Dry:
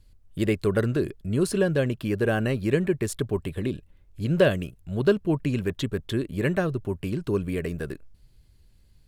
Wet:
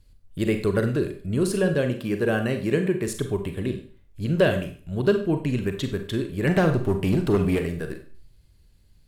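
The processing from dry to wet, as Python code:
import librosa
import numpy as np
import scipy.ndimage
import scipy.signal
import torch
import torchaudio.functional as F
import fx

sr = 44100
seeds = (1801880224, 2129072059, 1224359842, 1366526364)

y = fx.highpass(x, sr, hz=110.0, slope=12, at=(1.74, 3.08))
y = fx.leveller(y, sr, passes=2, at=(6.47, 7.59))
y = fx.rev_schroeder(y, sr, rt60_s=0.44, comb_ms=32, drr_db=6.5)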